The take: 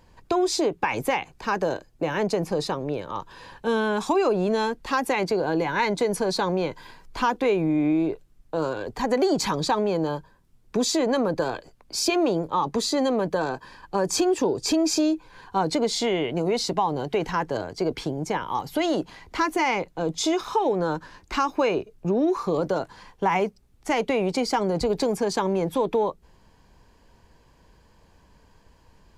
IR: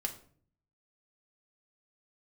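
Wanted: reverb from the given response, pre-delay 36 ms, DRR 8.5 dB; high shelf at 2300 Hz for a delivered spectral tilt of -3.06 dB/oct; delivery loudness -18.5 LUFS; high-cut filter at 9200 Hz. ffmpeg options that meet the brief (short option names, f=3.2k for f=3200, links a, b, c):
-filter_complex "[0:a]lowpass=9.2k,highshelf=f=2.3k:g=9,asplit=2[a][b];[1:a]atrim=start_sample=2205,adelay=36[c];[b][c]afir=irnorm=-1:irlink=0,volume=-9.5dB[d];[a][d]amix=inputs=2:normalize=0,volume=4dB"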